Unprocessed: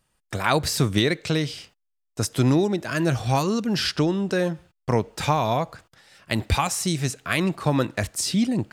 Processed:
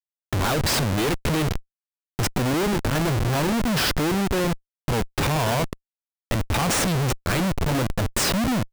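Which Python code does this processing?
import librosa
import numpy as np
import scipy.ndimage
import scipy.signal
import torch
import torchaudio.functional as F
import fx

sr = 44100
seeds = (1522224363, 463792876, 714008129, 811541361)

y = fx.schmitt(x, sr, flips_db=-27.5)
y = F.gain(torch.from_numpy(y), 2.5).numpy()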